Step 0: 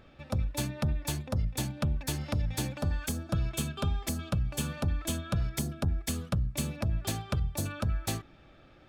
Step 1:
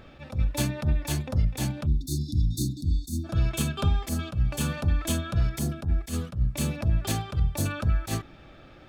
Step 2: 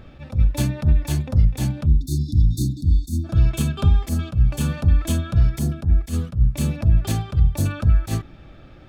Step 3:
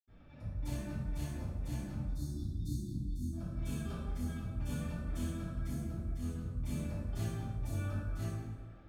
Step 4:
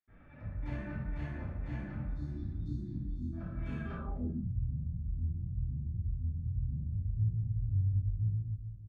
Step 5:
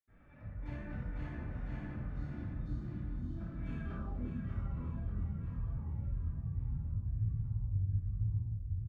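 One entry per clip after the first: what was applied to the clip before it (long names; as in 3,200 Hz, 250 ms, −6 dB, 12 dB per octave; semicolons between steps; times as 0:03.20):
time-frequency box erased 0:01.86–0:03.24, 380–3,500 Hz; level that may rise only so fast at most 220 dB per second; level +7 dB
low-shelf EQ 240 Hz +9 dB
compressor whose output falls as the input rises −19 dBFS, ratio −0.5; convolution reverb RT60 1.6 s, pre-delay 77 ms; level +4 dB
repeating echo 582 ms, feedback 30%, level −20 dB; low-pass filter sweep 1,900 Hz → 110 Hz, 0:03.95–0:04.55
repeating echo 588 ms, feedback 54%, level −7 dB; delay with pitch and tempo change per echo 127 ms, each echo −3 semitones, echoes 2, each echo −6 dB; level −4.5 dB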